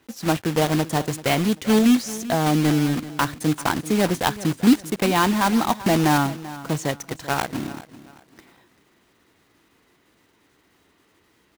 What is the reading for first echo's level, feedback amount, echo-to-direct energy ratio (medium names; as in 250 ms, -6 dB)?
-16.5 dB, 30%, -16.0 dB